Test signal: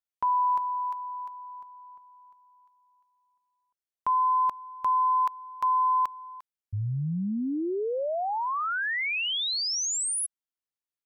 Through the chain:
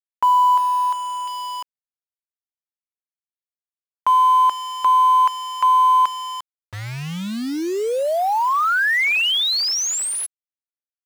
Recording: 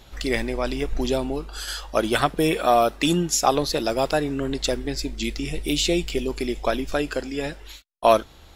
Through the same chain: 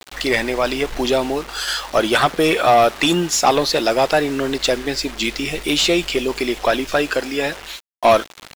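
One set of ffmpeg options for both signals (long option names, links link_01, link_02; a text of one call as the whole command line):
ffmpeg -i in.wav -filter_complex "[0:a]acrusher=bits=6:mix=0:aa=0.000001,asplit=2[link_01][link_02];[link_02]highpass=frequency=720:poles=1,volume=18dB,asoftclip=type=tanh:threshold=-4dB[link_03];[link_01][link_03]amix=inputs=2:normalize=0,lowpass=frequency=3800:poles=1,volume=-6dB" out.wav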